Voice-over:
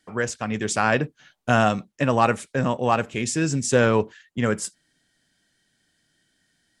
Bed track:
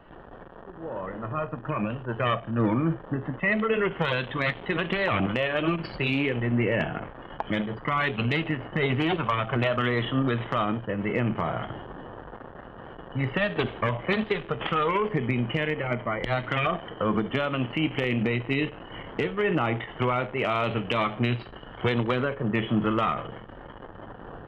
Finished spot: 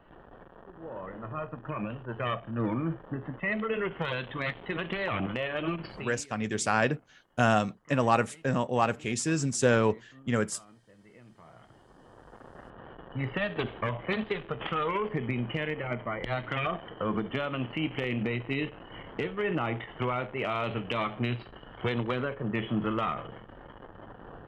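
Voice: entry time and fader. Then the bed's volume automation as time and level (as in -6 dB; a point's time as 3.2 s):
5.90 s, -5.0 dB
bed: 5.91 s -6 dB
6.27 s -28.5 dB
11.28 s -28.5 dB
12.56 s -5 dB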